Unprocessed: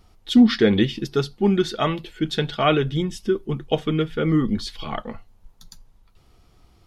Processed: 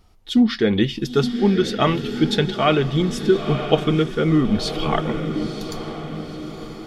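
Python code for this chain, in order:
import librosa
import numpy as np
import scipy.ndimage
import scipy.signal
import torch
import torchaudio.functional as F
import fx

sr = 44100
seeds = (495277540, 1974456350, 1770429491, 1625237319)

y = fx.echo_diffused(x, sr, ms=968, feedback_pct=50, wet_db=-11.5)
y = fx.rider(y, sr, range_db=5, speed_s=0.5)
y = y * 10.0 ** (2.0 / 20.0)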